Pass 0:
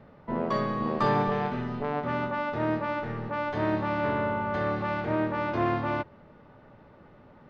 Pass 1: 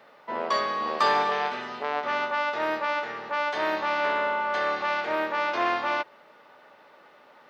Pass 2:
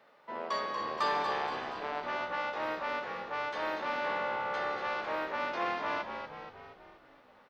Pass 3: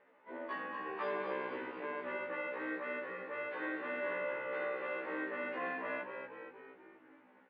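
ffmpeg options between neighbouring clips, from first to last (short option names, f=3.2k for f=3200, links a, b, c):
-af "highpass=560,highshelf=f=2.5k:g=11.5,volume=3dB"
-filter_complex "[0:a]asplit=8[a][b][c][d][e][f][g][h];[b]adelay=237,afreqshift=-64,volume=-7dB[i];[c]adelay=474,afreqshift=-128,volume=-12.2dB[j];[d]adelay=711,afreqshift=-192,volume=-17.4dB[k];[e]adelay=948,afreqshift=-256,volume=-22.6dB[l];[f]adelay=1185,afreqshift=-320,volume=-27.8dB[m];[g]adelay=1422,afreqshift=-384,volume=-33dB[n];[h]adelay=1659,afreqshift=-448,volume=-38.2dB[o];[a][i][j][k][l][m][n][o]amix=inputs=8:normalize=0,volume=-8.5dB"
-af "highpass=220,equalizer=f=290:t=q:w=4:g=7,equalizer=f=690:t=q:w=4:g=-8,equalizer=f=1.2k:t=q:w=4:g=-7,lowpass=f=2.4k:w=0.5412,lowpass=f=2.4k:w=1.3066,afftfilt=real='re*1.73*eq(mod(b,3),0)':imag='im*1.73*eq(mod(b,3),0)':win_size=2048:overlap=0.75,volume=1dB"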